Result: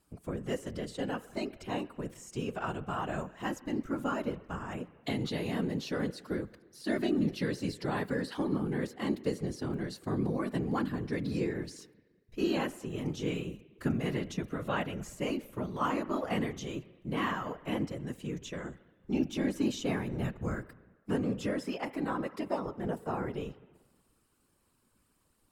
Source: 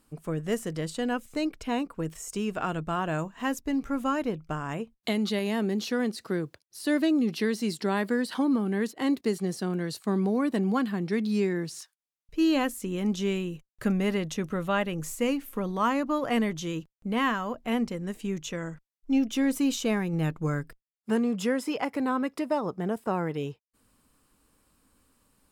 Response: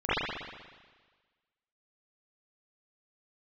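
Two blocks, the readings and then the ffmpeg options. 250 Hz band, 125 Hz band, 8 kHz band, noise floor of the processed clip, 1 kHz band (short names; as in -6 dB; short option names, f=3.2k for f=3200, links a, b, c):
-6.5 dB, -3.0 dB, -9.0 dB, -72 dBFS, -5.5 dB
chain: -filter_complex "[0:a]asplit=2[a][b];[1:a]atrim=start_sample=2205[c];[b][c]afir=irnorm=-1:irlink=0,volume=-31.5dB[d];[a][d]amix=inputs=2:normalize=0,afftfilt=real='hypot(re,im)*cos(2*PI*random(0))':imag='hypot(re,im)*sin(2*PI*random(1))':win_size=512:overlap=0.75,acrossover=split=7000[e][f];[f]acompressor=threshold=-56dB:ratio=4:attack=1:release=60[g];[e][g]amix=inputs=2:normalize=0"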